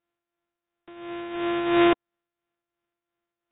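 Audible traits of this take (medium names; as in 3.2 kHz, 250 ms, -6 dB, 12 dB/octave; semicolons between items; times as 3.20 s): a buzz of ramps at a fixed pitch in blocks of 128 samples; tremolo triangle 2.9 Hz, depth 55%; aliases and images of a low sample rate 5.3 kHz, jitter 0%; AAC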